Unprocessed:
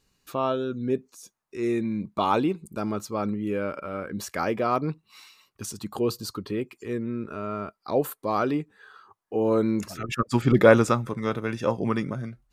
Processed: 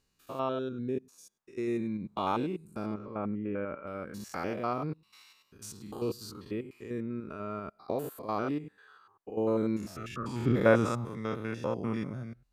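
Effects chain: stepped spectrum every 0.1 s; 2.94–3.87 LPF 2500 Hz 24 dB/oct; gain -5.5 dB

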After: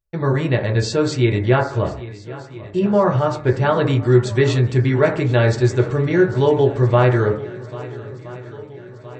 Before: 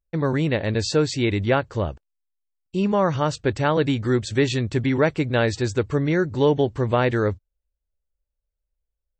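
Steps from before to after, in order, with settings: 2.79–3.62 high shelf 4000 Hz -10.5 dB; swung echo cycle 1.319 s, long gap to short 1.5:1, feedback 50%, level -18 dB; reverb RT60 0.55 s, pre-delay 4 ms, DRR 0 dB

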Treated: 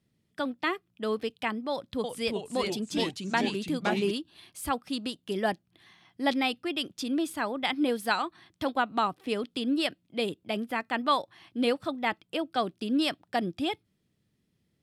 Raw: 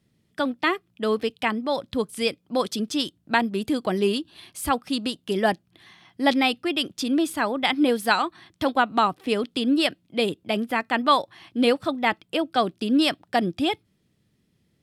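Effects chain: 1.72–4.11 echoes that change speed 0.318 s, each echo -2 st, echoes 3; gain -6.5 dB

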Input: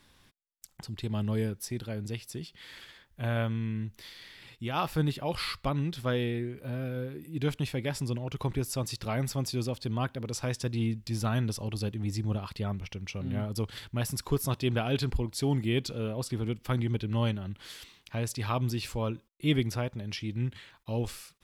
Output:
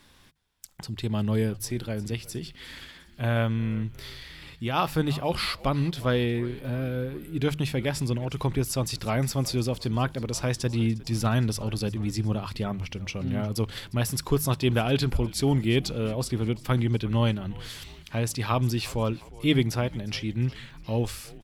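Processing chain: notches 50/100/150 Hz; frequency-shifting echo 0.356 s, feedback 57%, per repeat -91 Hz, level -20 dB; gain +5 dB

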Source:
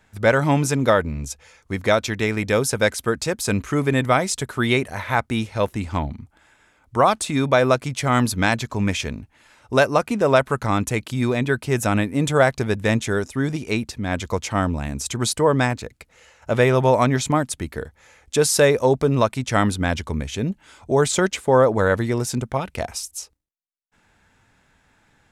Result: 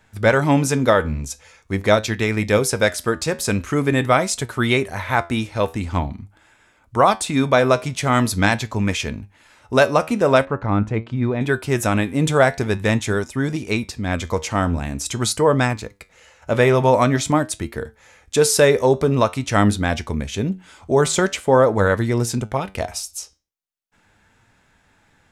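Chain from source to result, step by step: flange 0.45 Hz, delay 8.4 ms, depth 4.5 ms, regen +77%; 10.45–11.41 tape spacing loss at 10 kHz 35 dB; gain +6 dB

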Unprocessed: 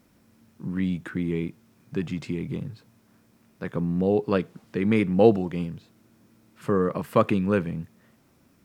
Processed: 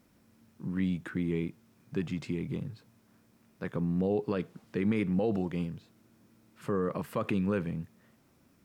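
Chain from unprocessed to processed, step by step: limiter -16 dBFS, peak gain reduction 11.5 dB; gain -4 dB

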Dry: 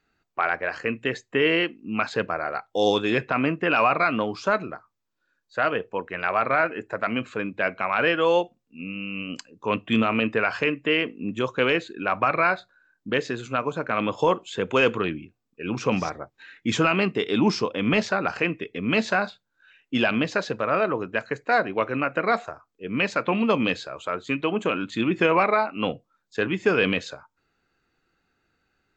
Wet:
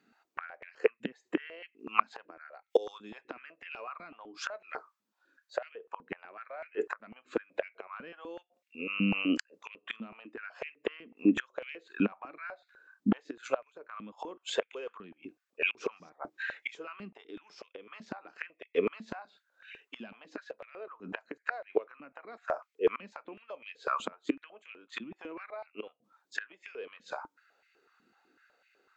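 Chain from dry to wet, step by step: flipped gate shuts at -18 dBFS, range -28 dB; 2.32–3.81 high shelf 4100 Hz +7.5 dB; stepped high-pass 8 Hz 220–2200 Hz

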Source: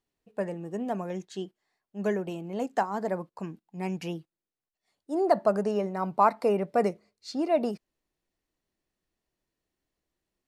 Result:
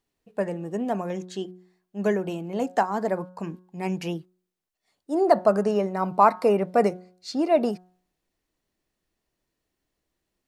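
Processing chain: de-hum 182.1 Hz, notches 9; gain +4.5 dB

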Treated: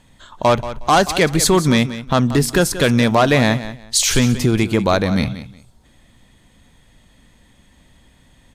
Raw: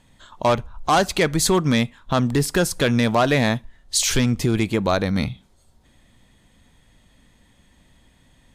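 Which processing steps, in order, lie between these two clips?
feedback echo 0.182 s, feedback 21%, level -13.5 dB; gain +4 dB

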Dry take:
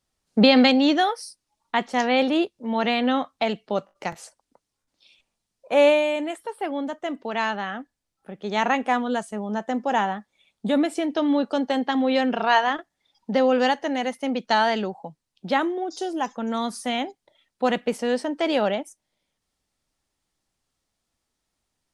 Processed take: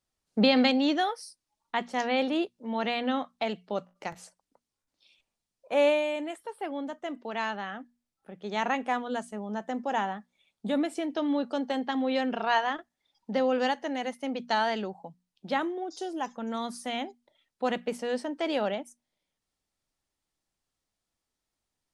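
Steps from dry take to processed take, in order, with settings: notches 60/120/180/240 Hz; gain -6.5 dB

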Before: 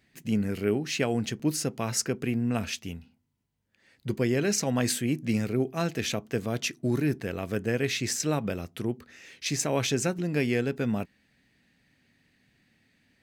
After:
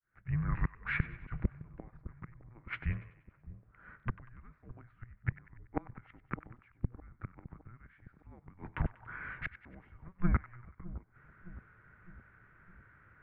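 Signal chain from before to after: opening faded in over 1.07 s; flipped gate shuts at -20 dBFS, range -35 dB; on a send: split-band echo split 1200 Hz, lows 0.611 s, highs 95 ms, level -15 dB; on the sum: mistuned SSB -360 Hz 250–2200 Hz; gain +9.5 dB

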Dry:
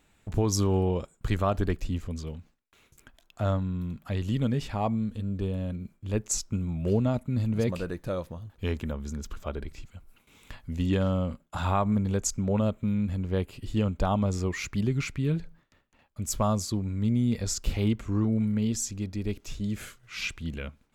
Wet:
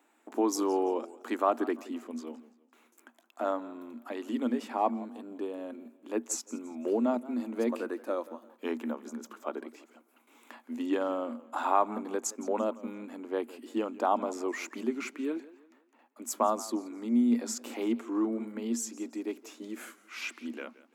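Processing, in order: rippled Chebyshev high-pass 230 Hz, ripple 6 dB; bell 4000 Hz -7 dB 1.6 oct; warbling echo 0.17 s, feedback 37%, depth 135 cents, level -19 dB; gain +4.5 dB

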